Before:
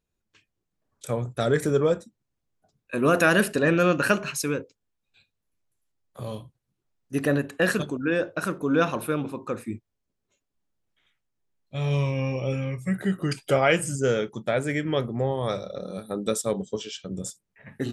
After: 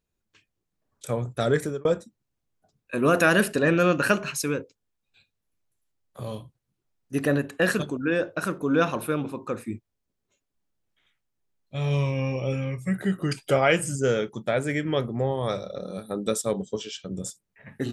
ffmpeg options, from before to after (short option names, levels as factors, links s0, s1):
-filter_complex "[0:a]asplit=2[s0][s1];[s0]atrim=end=1.85,asetpts=PTS-STARTPTS,afade=t=out:st=1.55:d=0.3[s2];[s1]atrim=start=1.85,asetpts=PTS-STARTPTS,afade=t=in:d=0.004:c=hsin[s3];[s2][s3]concat=n=2:v=0:a=1"